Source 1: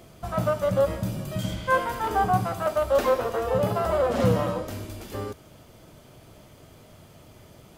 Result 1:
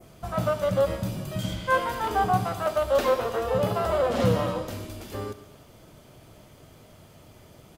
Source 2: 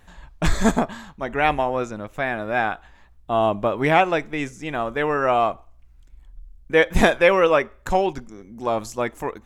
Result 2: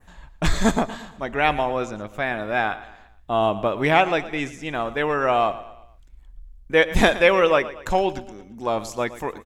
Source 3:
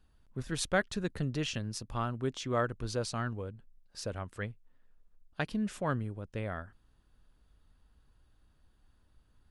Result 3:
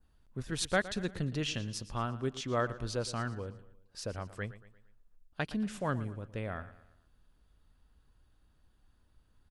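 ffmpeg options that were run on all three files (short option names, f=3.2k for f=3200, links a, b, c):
-af "adynamicequalizer=threshold=0.00891:dfrequency=3600:dqfactor=1.1:tfrequency=3600:tqfactor=1.1:attack=5:release=100:ratio=0.375:range=2:mode=boostabove:tftype=bell,aecho=1:1:115|230|345|460:0.158|0.0713|0.0321|0.0144,volume=-1dB"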